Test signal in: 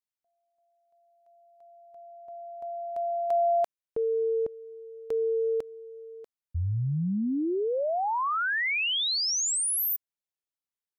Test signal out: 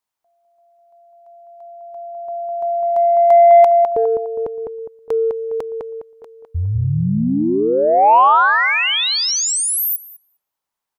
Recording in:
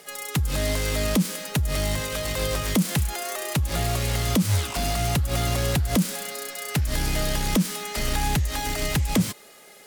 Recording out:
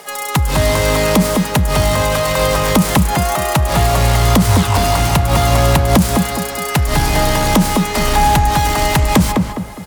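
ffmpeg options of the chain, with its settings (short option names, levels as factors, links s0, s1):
-filter_complex "[0:a]equalizer=f=930:t=o:w=1:g=10,asplit=2[s0][s1];[s1]adelay=205,lowpass=f=1800:p=1,volume=0.668,asplit=2[s2][s3];[s3]adelay=205,lowpass=f=1800:p=1,volume=0.39,asplit=2[s4][s5];[s5]adelay=205,lowpass=f=1800:p=1,volume=0.39,asplit=2[s6][s7];[s7]adelay=205,lowpass=f=1800:p=1,volume=0.39,asplit=2[s8][s9];[s9]adelay=205,lowpass=f=1800:p=1,volume=0.39[s10];[s0][s2][s4][s6][s8][s10]amix=inputs=6:normalize=0,acontrast=70,volume=1.26"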